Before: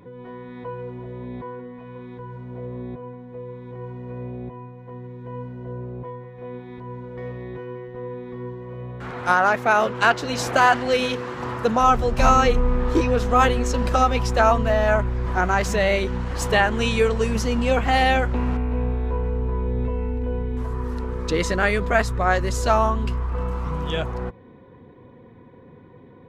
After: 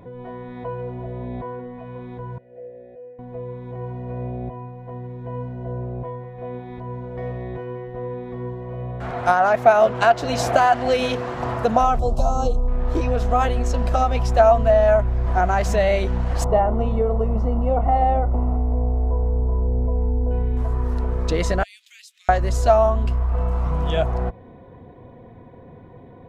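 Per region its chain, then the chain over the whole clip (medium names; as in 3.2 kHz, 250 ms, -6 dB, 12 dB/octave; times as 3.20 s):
2.38–3.19 s: vowel filter e + bass shelf 74 Hz +10.5 dB
11.99–12.68 s: Butterworth band-stop 2 kHz, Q 0.74 + peaking EQ 7.6 kHz +5 dB 0.34 oct
16.44–20.31 s: Savitzky-Golay filter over 65 samples + doubling 36 ms -14 dB
21.63–22.29 s: steep high-pass 2.7 kHz + compression 2:1, threshold -50 dBFS
whole clip: bass shelf 92 Hz +12 dB; compression, threshold -17 dBFS; peaking EQ 680 Hz +14 dB 0.39 oct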